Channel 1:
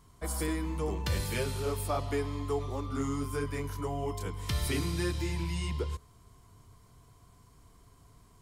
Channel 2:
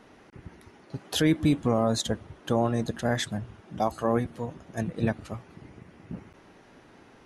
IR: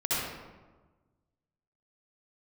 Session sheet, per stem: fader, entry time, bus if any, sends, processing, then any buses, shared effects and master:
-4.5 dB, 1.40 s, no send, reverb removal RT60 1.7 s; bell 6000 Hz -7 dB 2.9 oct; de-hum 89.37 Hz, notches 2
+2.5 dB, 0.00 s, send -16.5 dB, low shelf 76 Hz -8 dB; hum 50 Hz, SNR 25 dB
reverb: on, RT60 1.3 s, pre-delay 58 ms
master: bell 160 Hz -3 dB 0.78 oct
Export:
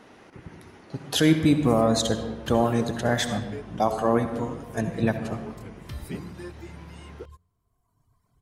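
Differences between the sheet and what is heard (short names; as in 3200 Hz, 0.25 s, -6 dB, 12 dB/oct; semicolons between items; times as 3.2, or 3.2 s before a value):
stem 2: missing hum 50 Hz, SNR 25 dB; master: missing bell 160 Hz -3 dB 0.78 oct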